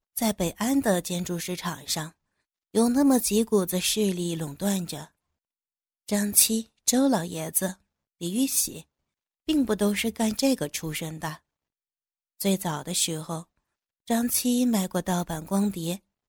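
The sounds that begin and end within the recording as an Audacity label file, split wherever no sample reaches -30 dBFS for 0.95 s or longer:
6.090000	11.340000	sound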